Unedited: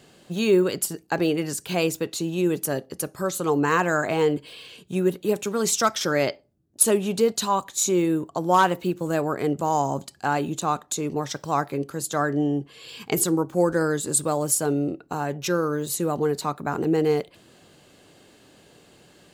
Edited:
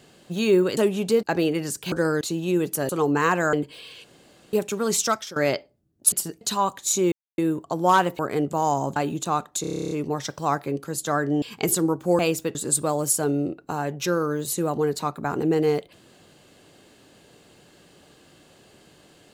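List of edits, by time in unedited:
0:00.77–0:01.06: swap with 0:06.86–0:07.32
0:01.75–0:02.11: swap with 0:13.68–0:13.97
0:02.79–0:03.37: remove
0:04.01–0:04.27: remove
0:04.78–0:05.27: fill with room tone
0:05.77–0:06.10: fade out, to −19.5 dB
0:08.03: splice in silence 0.26 s
0:08.84–0:09.27: remove
0:10.04–0:10.32: remove
0:10.97: stutter 0.03 s, 11 plays
0:12.48–0:12.91: remove

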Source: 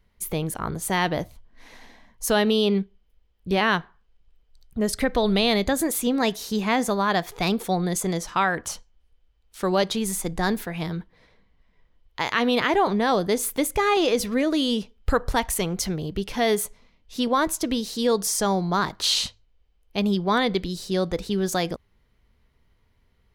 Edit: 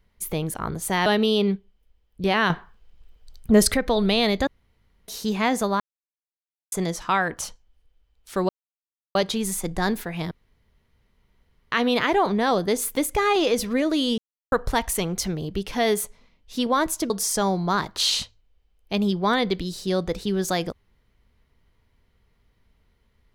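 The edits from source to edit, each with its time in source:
0:01.06–0:02.33: remove
0:03.77–0:05.01: clip gain +8.5 dB
0:05.74–0:06.35: fill with room tone
0:07.07–0:07.99: silence
0:09.76: splice in silence 0.66 s
0:10.92–0:12.33: fill with room tone
0:14.79–0:15.13: silence
0:17.71–0:18.14: remove

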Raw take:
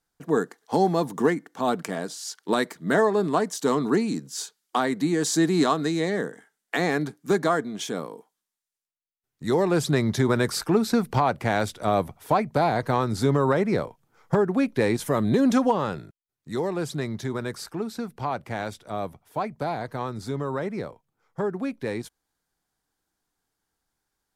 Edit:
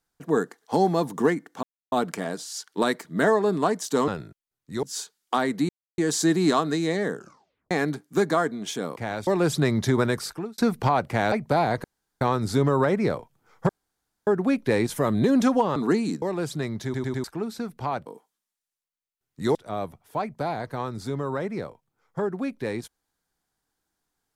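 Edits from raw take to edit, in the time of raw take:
0:01.63: splice in silence 0.29 s
0:03.79–0:04.25: swap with 0:15.86–0:16.61
0:05.11: splice in silence 0.29 s
0:06.26: tape stop 0.58 s
0:08.09–0:09.58: swap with 0:18.45–0:18.76
0:10.32–0:10.89: fade out
0:11.63–0:12.37: remove
0:12.89: splice in room tone 0.37 s
0:14.37: splice in room tone 0.58 s
0:17.23: stutter in place 0.10 s, 4 plays

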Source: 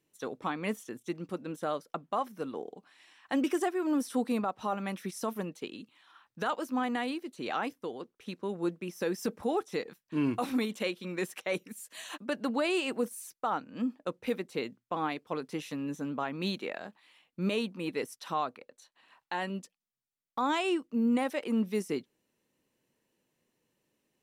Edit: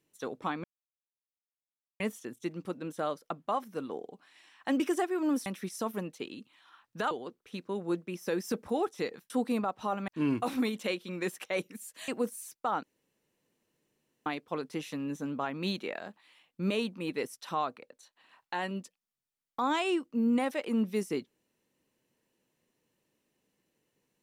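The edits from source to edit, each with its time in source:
0:00.64: splice in silence 1.36 s
0:04.10–0:04.88: move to 0:10.04
0:06.53–0:07.85: remove
0:12.04–0:12.87: remove
0:13.62–0:15.05: fill with room tone

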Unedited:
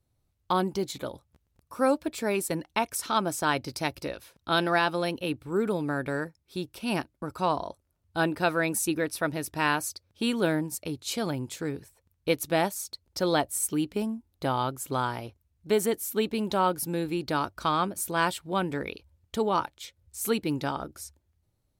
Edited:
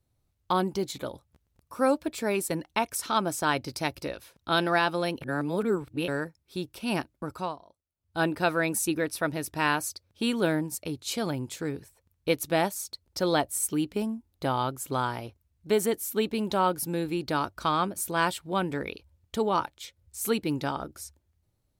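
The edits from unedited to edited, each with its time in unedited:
0:05.22–0:06.08: reverse
0:07.31–0:08.23: duck −19.5 dB, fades 0.27 s

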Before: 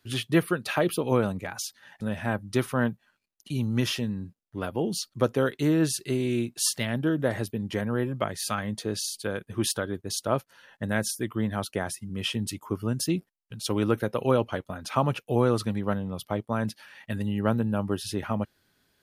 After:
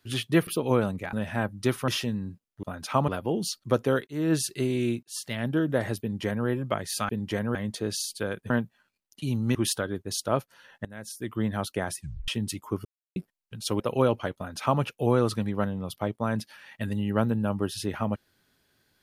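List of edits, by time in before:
0:00.47–0:00.88: remove
0:01.54–0:02.03: remove
0:02.78–0:03.83: move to 0:09.54
0:05.57–0:05.83: fade in
0:06.53–0:06.98: fade in
0:07.51–0:07.97: duplicate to 0:08.59
0:10.84–0:11.35: fade in quadratic, from −18 dB
0:11.98: tape stop 0.29 s
0:12.84–0:13.15: silence
0:13.79–0:14.09: remove
0:14.65–0:15.10: duplicate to 0:04.58

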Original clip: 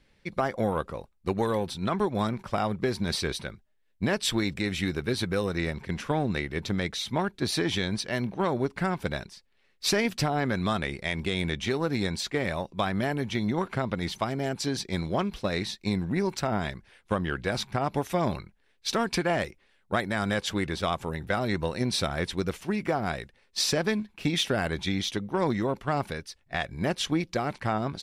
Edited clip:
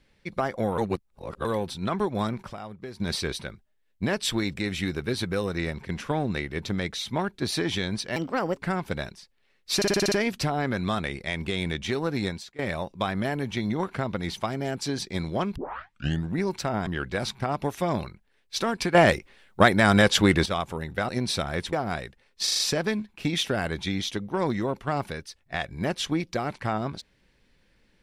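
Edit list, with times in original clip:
0:00.78–0:01.45: reverse
0:02.53–0:03.00: clip gain −11.5 dB
0:08.16–0:08.71: play speed 135%
0:09.90: stutter 0.06 s, 7 plays
0:12.06–0:12.37: fade out quadratic, to −20.5 dB
0:15.34: tape start 0.72 s
0:16.65–0:17.19: remove
0:19.27–0:20.78: clip gain +9.5 dB
0:21.41–0:21.73: remove
0:22.37–0:22.89: remove
0:23.59: stutter 0.04 s, 5 plays

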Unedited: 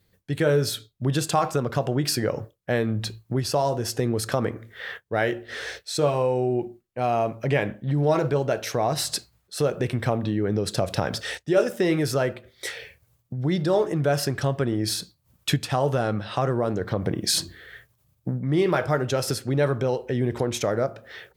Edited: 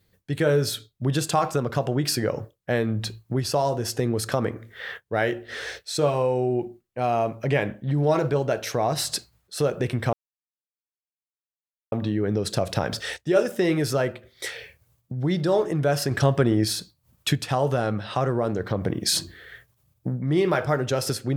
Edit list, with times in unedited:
0:10.13: splice in silence 1.79 s
0:14.32–0:14.86: clip gain +4.5 dB

